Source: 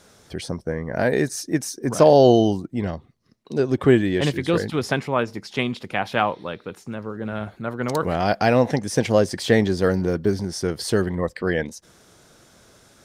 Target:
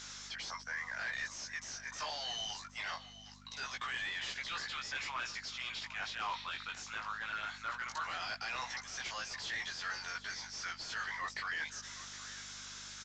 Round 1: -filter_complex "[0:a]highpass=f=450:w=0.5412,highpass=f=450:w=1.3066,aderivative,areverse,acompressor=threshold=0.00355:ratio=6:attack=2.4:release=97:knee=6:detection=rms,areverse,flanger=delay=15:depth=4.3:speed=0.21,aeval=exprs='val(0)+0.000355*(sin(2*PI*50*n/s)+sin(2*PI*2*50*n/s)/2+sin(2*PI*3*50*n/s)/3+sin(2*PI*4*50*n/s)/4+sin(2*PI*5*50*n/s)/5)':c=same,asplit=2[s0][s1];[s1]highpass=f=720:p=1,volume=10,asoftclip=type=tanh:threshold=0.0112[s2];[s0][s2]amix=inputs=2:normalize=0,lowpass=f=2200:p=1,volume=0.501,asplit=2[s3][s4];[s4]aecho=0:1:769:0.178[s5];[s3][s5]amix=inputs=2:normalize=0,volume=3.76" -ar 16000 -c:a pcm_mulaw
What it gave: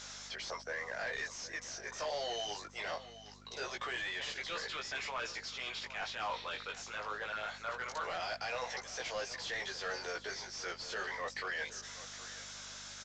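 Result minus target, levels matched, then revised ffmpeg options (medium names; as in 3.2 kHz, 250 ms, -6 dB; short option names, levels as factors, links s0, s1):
500 Hz band +12.5 dB
-filter_complex "[0:a]highpass=f=940:w=0.5412,highpass=f=940:w=1.3066,aderivative,areverse,acompressor=threshold=0.00355:ratio=6:attack=2.4:release=97:knee=6:detection=rms,areverse,flanger=delay=15:depth=4.3:speed=0.21,aeval=exprs='val(0)+0.000355*(sin(2*PI*50*n/s)+sin(2*PI*2*50*n/s)/2+sin(2*PI*3*50*n/s)/3+sin(2*PI*4*50*n/s)/4+sin(2*PI*5*50*n/s)/5)':c=same,asplit=2[s0][s1];[s1]highpass=f=720:p=1,volume=10,asoftclip=type=tanh:threshold=0.0112[s2];[s0][s2]amix=inputs=2:normalize=0,lowpass=f=2200:p=1,volume=0.501,asplit=2[s3][s4];[s4]aecho=0:1:769:0.178[s5];[s3][s5]amix=inputs=2:normalize=0,volume=3.76" -ar 16000 -c:a pcm_mulaw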